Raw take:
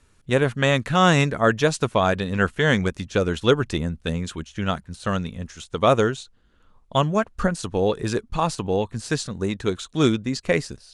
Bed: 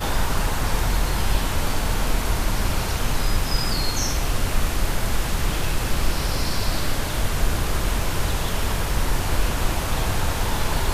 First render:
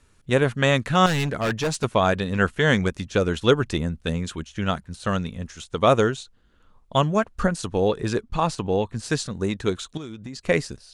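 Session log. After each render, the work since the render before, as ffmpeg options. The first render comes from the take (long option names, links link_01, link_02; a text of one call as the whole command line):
ffmpeg -i in.wav -filter_complex "[0:a]asettb=1/sr,asplit=3[link_01][link_02][link_03];[link_01]atrim=end=1.064[link_04];[link_02]atrim=start=1.06:end=1.84,asetpts=PTS-STARTPTS,afade=type=in:duration=0.004:curve=qsin,afade=type=out:start_time=0.776:duration=0.004:curve=qsin,asoftclip=type=hard:threshold=-20.5dB[link_05];[link_03]atrim=start=1.836[link_06];[link_04][link_05]acrossfade=duration=0.004:curve1=hsin:curve2=qsin[link_07];[link_07][link_06]acrossfade=duration=0.004:curve1=qsin:curve2=hsin,asettb=1/sr,asplit=3[link_08][link_09][link_10];[link_08]atrim=end=7.884[link_11];[link_09]atrim=start=7.88:end=9.03,asetpts=PTS-STARTPTS,afade=type=in:duration=0.004:curve=qsin,afade=type=out:start_time=1.146:duration=0.004:curve=qsin,highshelf=frequency=8600:gain=-7.5[link_12];[link_10]atrim=start=9.026[link_13];[link_11][link_12]acrossfade=duration=0.004:curve1=hsin:curve2=qsin[link_14];[link_14][link_13]acrossfade=duration=0.004:curve1=qsin:curve2=hsin,asettb=1/sr,asplit=3[link_15][link_16][link_17];[link_15]atrim=end=9.974[link_18];[link_16]atrim=start=9.97:end=10.48,asetpts=PTS-STARTPTS,afade=type=in:duration=0.004:curve=qsin,afade=type=out:start_time=0.506:duration=0.004:curve=qsin,acompressor=threshold=-31dB:ratio=16:attack=3.2:release=140:knee=1:detection=peak[link_19];[link_17]atrim=start=10.476[link_20];[link_18][link_19]acrossfade=duration=0.004:curve1=hsin:curve2=qsin[link_21];[link_21][link_20]acrossfade=duration=0.004:curve1=qsin:curve2=hsin" out.wav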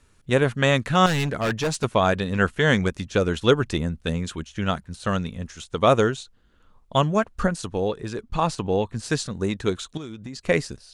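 ffmpeg -i in.wav -filter_complex "[0:a]asplit=2[link_01][link_02];[link_01]atrim=end=8.18,asetpts=PTS-STARTPTS,afade=type=out:start_time=7.37:duration=0.81:silence=0.421697[link_03];[link_02]atrim=start=8.18,asetpts=PTS-STARTPTS,afade=type=in:duration=0.004:curve=hsin:silence=0.421697[link_04];[link_03][link_04]concat=n=2:v=0:a=1" out.wav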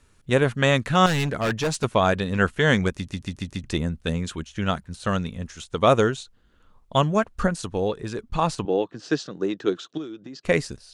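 ffmpeg -i in.wav -filter_complex "[0:a]asettb=1/sr,asplit=3[link_01][link_02][link_03];[link_01]atrim=end=8.654[link_04];[link_02]atrim=start=8.65:end=10.45,asetpts=PTS-STARTPTS,afade=type=in:duration=0.004:curve=qsin,afade=type=out:start_time=1.796:duration=0.004:curve=qsin,highpass=frequency=170:width=0.5412,highpass=frequency=170:width=1.3066,equalizer=frequency=220:width_type=q:width=4:gain=-10,equalizer=frequency=320:width_type=q:width=4:gain=7,equalizer=frequency=960:width_type=q:width=4:gain=-6,equalizer=frequency=2200:width_type=q:width=4:gain=-8,equalizer=frequency=4100:width_type=q:width=4:gain=-5,lowpass=frequency=5400:width=0.5412,lowpass=frequency=5400:width=1.3066[link_05];[link_03]atrim=start=10.446[link_06];[link_04][link_05]acrossfade=duration=0.004:curve1=hsin:curve2=qsin[link_07];[link_07][link_06]acrossfade=duration=0.004:curve1=qsin:curve2=hsin,asplit=6[link_08][link_09][link_10][link_11][link_12][link_13];[link_08]atrim=end=3.082[link_14];[link_09]atrim=start=2.938:end=3.082[link_15];[link_10]atrim=start=2.938:end=3.082[link_16];[link_11]atrim=start=2.938:end=3.082[link_17];[link_12]atrim=start=2.938:end=3.082[link_18];[link_13]atrim=start=3.638[link_19];[link_14][link_15]acrossfade=duration=0.004:curve1=hsin:curve2=hsin[link_20];[link_20][link_16]acrossfade=duration=0.004:curve1=hsin:curve2=hsin[link_21];[link_21][link_17]acrossfade=duration=0.004:curve1=hsin:curve2=hsin[link_22];[link_22][link_18]acrossfade=duration=0.004:curve1=hsin:curve2=hsin[link_23];[link_23][link_19]acrossfade=duration=0.004:curve1=hsin:curve2=hsin" out.wav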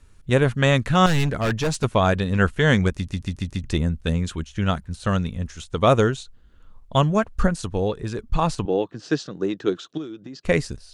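ffmpeg -i in.wav -af "lowshelf=frequency=99:gain=11.5" out.wav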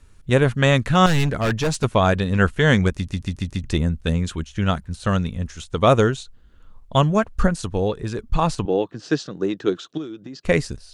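ffmpeg -i in.wav -af "volume=1.5dB" out.wav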